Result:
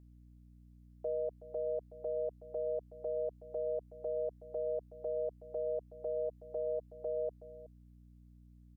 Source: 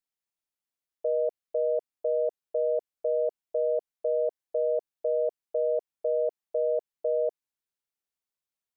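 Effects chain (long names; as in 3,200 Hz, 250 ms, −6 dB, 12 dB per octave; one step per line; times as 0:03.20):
0:06.25–0:06.92: comb filter 6.4 ms, depth 36%
brickwall limiter −29 dBFS, peak gain reduction 11.5 dB
mains hum 60 Hz, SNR 19 dB
on a send: single-tap delay 372 ms −16.5 dB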